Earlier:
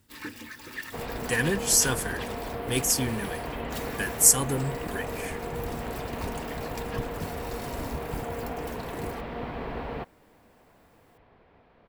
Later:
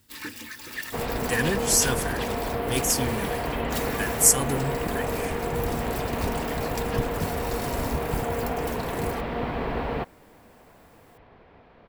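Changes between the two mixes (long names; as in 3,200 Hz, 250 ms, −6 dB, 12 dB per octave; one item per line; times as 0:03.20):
first sound: add high-shelf EQ 2,400 Hz +7.5 dB
second sound +6.0 dB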